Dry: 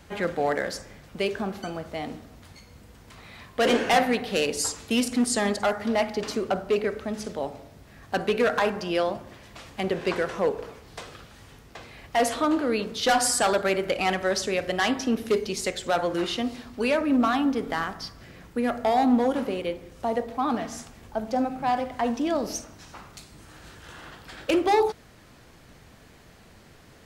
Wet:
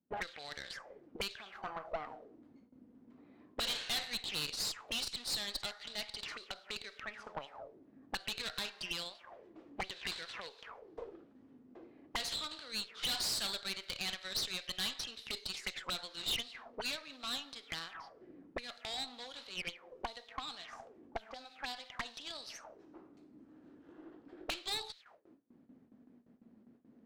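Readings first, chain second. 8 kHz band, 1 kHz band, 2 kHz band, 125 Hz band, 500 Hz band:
−12.0 dB, −19.5 dB, −12.5 dB, −17.5 dB, −24.0 dB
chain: envelope filter 200–4,000 Hz, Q 6.3, up, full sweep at −24 dBFS
noise gate with hold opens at −56 dBFS
low-shelf EQ 200 Hz −10 dB
tube saturation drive 41 dB, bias 0.7
level +10 dB

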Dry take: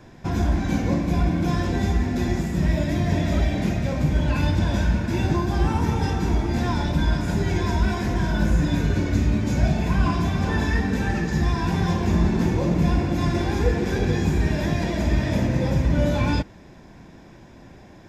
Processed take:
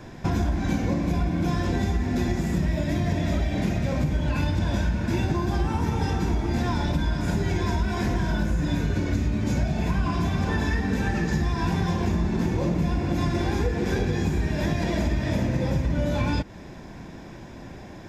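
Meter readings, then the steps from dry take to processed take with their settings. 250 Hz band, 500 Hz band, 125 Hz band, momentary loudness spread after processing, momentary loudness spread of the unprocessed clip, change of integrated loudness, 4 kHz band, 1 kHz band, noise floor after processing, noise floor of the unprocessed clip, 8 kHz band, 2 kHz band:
−2.5 dB, −2.5 dB, −3.0 dB, 1 LU, 3 LU, −2.5 dB, −2.5 dB, −2.5 dB, −41 dBFS, −46 dBFS, can't be measured, −2.5 dB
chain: downward compressor, threshold −26 dBFS, peak gain reduction 12 dB
level +5 dB

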